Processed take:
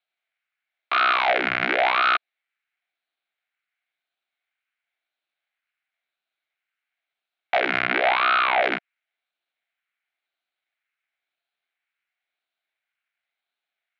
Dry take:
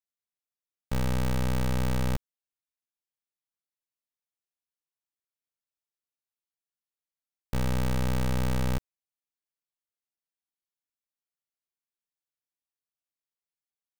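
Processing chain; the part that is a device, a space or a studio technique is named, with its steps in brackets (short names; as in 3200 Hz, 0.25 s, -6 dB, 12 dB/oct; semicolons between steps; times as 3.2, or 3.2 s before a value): 7.83–8.6 LPF 5200 Hz -> 2500 Hz 12 dB/oct; band shelf 1800 Hz +10.5 dB; voice changer toy (ring modulator with a swept carrier 700 Hz, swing 85%, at 0.96 Hz; speaker cabinet 440–4000 Hz, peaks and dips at 480 Hz -7 dB, 700 Hz +7 dB, 1000 Hz -7 dB, 1500 Hz +6 dB, 2200 Hz +9 dB, 4000 Hz +6 dB); gain +6.5 dB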